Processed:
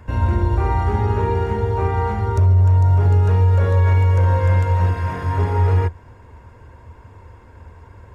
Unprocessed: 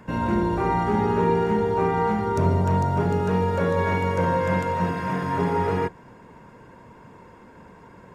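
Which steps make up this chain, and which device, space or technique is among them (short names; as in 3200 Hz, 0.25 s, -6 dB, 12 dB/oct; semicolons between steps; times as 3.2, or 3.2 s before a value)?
car stereo with a boomy subwoofer (resonant low shelf 120 Hz +11.5 dB, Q 3; limiter -8.5 dBFS, peak gain reduction 8 dB)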